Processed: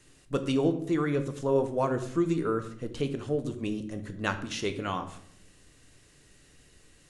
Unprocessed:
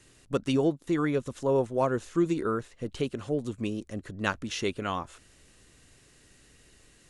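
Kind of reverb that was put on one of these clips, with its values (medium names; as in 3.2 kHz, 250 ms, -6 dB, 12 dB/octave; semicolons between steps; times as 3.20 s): simulated room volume 140 m³, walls mixed, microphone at 0.41 m; trim -1.5 dB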